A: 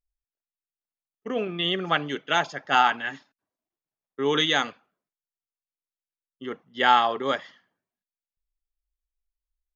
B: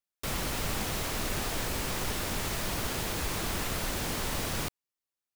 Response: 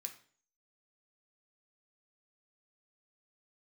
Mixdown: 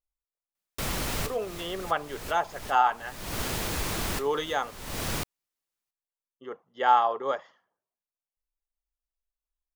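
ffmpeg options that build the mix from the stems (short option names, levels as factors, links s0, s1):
-filter_complex "[0:a]equalizer=f=125:t=o:w=1:g=-5,equalizer=f=250:t=o:w=1:g=-8,equalizer=f=500:t=o:w=1:g=5,equalizer=f=1000:t=o:w=1:g=6,equalizer=f=2000:t=o:w=1:g=-6,equalizer=f=4000:t=o:w=1:g=-8,volume=0.531,asplit=2[s0][s1];[1:a]adelay=550,volume=1.26[s2];[s1]apad=whole_len=260506[s3];[s2][s3]sidechaincompress=threshold=0.00794:ratio=16:attack=5.4:release=301[s4];[s0][s4]amix=inputs=2:normalize=0"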